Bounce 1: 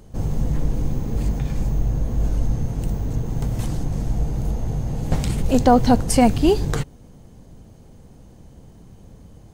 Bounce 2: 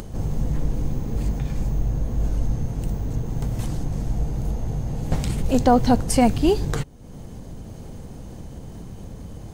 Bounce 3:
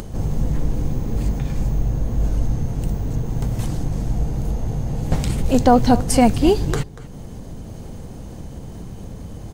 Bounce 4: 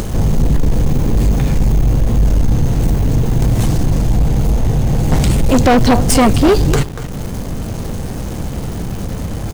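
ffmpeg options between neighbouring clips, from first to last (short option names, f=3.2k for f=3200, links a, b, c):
-af "acompressor=mode=upward:threshold=-23dB:ratio=2.5,volume=-2dB"
-filter_complex "[0:a]asplit=2[a][b];[b]adelay=239.1,volume=-16dB,highshelf=f=4k:g=-5.38[c];[a][c]amix=inputs=2:normalize=0,volume=3dB"
-filter_complex "[0:a]asplit=2[a][b];[b]acrusher=bits=5:mix=0:aa=0.000001,volume=-3.5dB[c];[a][c]amix=inputs=2:normalize=0,asoftclip=type=tanh:threshold=-14dB,volume=7.5dB"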